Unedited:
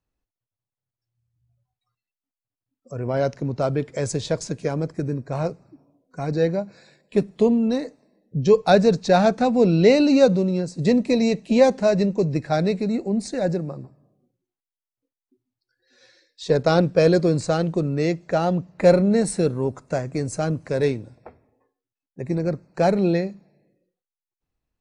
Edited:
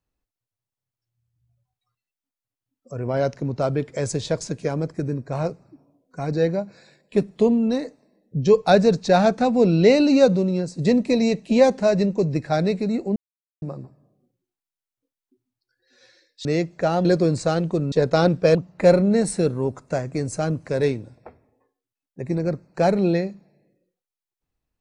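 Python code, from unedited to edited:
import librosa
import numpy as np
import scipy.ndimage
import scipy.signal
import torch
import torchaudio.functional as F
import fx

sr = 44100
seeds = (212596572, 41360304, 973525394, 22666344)

y = fx.edit(x, sr, fx.silence(start_s=13.16, length_s=0.46),
    fx.swap(start_s=16.45, length_s=0.63, other_s=17.95, other_length_s=0.6), tone=tone)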